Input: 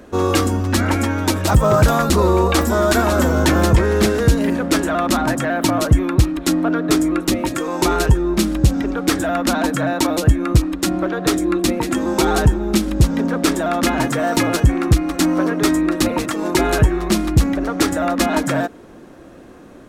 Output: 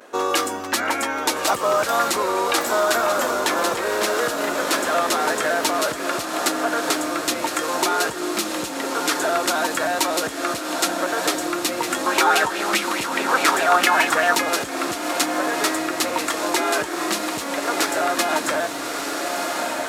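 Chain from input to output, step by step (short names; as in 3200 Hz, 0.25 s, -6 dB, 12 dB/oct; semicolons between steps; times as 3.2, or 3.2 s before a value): vibrato 0.52 Hz 37 cents; diffused feedback echo 1.322 s, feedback 42%, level -5.5 dB; compressor, threshold -14 dBFS, peak gain reduction 7.5 dB; HPF 580 Hz 12 dB/oct; 12.06–14.35 LFO bell 4.8 Hz 970–2700 Hz +12 dB; gain +2.5 dB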